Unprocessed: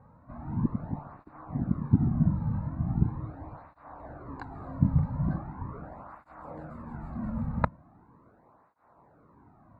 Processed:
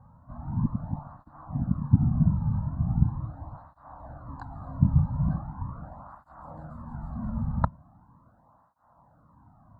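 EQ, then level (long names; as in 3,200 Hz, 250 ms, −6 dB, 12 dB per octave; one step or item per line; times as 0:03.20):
low-shelf EQ 390 Hz +5 dB
phaser with its sweep stopped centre 960 Hz, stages 4
0.0 dB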